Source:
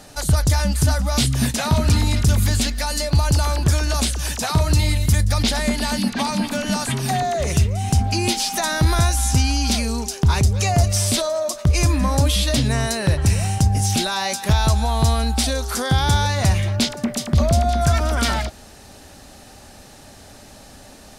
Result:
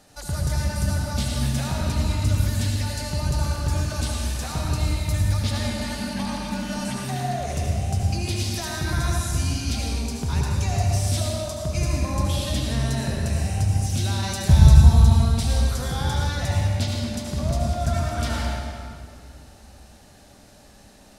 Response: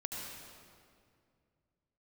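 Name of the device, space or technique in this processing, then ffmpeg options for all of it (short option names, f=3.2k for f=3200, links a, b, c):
stairwell: -filter_complex "[0:a]asettb=1/sr,asplit=3[a][b][c];[a]atrim=end=14.234[d];[b]atrim=start=14.23:end=15.02,asetpts=PTS-STARTPTS,afade=t=in:d=0.004:c=qsin,afade=t=out:st=0.786:d=0.004:c=qsin,bass=f=250:g=14,treble=f=4k:g=5[e];[c]atrim=start=15.016[f];[d][e]acrossfade=d=0.004:c1=hsin:c2=qsin[g];[g][f]acrossfade=d=0.004:c1=qsin:c2=hsin[h];[1:a]atrim=start_sample=2205[i];[h][i]afir=irnorm=-1:irlink=0,volume=-8dB"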